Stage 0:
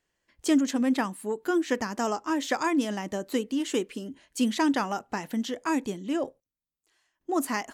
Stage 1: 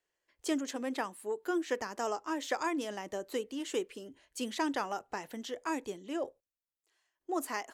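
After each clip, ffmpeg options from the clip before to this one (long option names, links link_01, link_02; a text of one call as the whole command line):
ffmpeg -i in.wav -filter_complex "[0:a]lowshelf=frequency=300:width_type=q:width=1.5:gain=-8,acrossover=split=130|6200[link_01][link_02][link_03];[link_01]dynaudnorm=framelen=330:gausssize=11:maxgain=9dB[link_04];[link_04][link_02][link_03]amix=inputs=3:normalize=0,volume=-6.5dB" out.wav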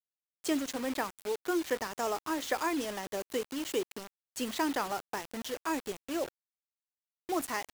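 ffmpeg -i in.wav -af "acrusher=bits=6:mix=0:aa=0.000001,volume=1.5dB" out.wav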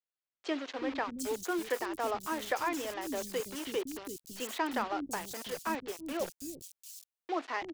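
ffmpeg -i in.wav -filter_complex "[0:a]acrossover=split=290|4600[link_01][link_02][link_03];[link_01]adelay=330[link_04];[link_03]adelay=750[link_05];[link_04][link_02][link_05]amix=inputs=3:normalize=0" out.wav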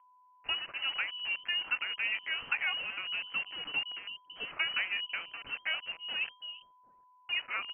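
ffmpeg -i in.wav -af "aeval=exprs='val(0)+0.001*sin(2*PI*2200*n/s)':channel_layout=same,lowpass=frequency=2700:width_type=q:width=0.5098,lowpass=frequency=2700:width_type=q:width=0.6013,lowpass=frequency=2700:width_type=q:width=0.9,lowpass=frequency=2700:width_type=q:width=2.563,afreqshift=-3200" out.wav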